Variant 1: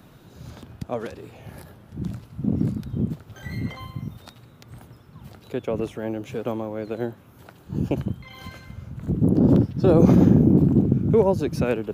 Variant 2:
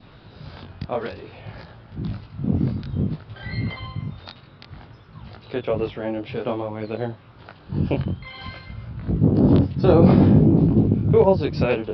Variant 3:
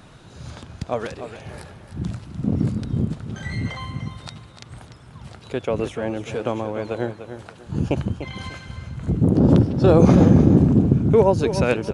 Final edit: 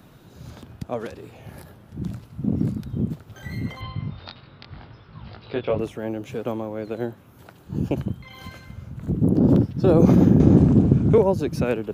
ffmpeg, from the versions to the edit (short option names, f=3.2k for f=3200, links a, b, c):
-filter_complex "[0:a]asplit=3[a][b][c];[a]atrim=end=3.812[d];[1:a]atrim=start=3.808:end=5.792[e];[b]atrim=start=5.788:end=10.402[f];[2:a]atrim=start=10.398:end=11.182[g];[c]atrim=start=11.178[h];[d][e]acrossfade=d=0.004:c1=hsin:c2=hsin[i];[i][f]acrossfade=d=0.004:c1=hsin:c2=hsin[j];[j][g]acrossfade=d=0.004:c1=hsin:c2=hsin[k];[k][h]acrossfade=d=0.004:c1=hsin:c2=hsin"